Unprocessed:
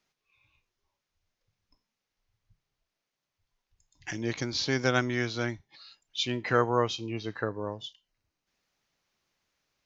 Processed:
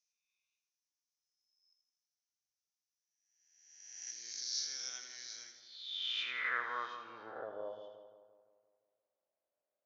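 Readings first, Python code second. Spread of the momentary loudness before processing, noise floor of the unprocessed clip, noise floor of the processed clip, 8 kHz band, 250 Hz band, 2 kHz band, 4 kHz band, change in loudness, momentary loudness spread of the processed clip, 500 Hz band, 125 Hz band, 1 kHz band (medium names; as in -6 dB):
14 LU, under -85 dBFS, under -85 dBFS, no reading, -30.0 dB, -7.5 dB, -5.0 dB, -9.5 dB, 16 LU, -18.0 dB, under -35 dB, -11.0 dB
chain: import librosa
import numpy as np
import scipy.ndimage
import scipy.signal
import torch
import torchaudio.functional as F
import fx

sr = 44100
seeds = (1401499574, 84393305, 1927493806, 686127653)

y = fx.spec_swells(x, sr, rise_s=1.24)
y = fx.filter_sweep_bandpass(y, sr, from_hz=5900.0, to_hz=600.0, start_s=5.44, end_s=7.59, q=5.5)
y = fx.echo_split(y, sr, split_hz=1200.0, low_ms=172, high_ms=81, feedback_pct=52, wet_db=-7.5)
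y = y * 10.0 ** (-2.5 / 20.0)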